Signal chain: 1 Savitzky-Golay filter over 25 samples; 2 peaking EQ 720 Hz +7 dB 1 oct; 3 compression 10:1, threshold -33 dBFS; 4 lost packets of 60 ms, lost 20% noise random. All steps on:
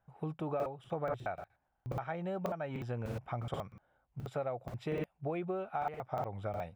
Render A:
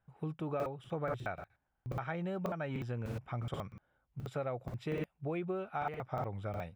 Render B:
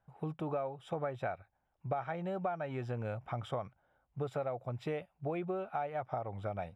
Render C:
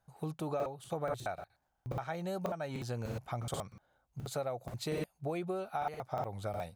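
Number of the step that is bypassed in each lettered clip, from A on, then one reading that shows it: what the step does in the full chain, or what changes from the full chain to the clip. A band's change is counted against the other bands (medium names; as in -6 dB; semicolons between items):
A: 2, 1 kHz band -3.0 dB; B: 4, momentary loudness spread change -2 LU; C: 1, 4 kHz band +7.5 dB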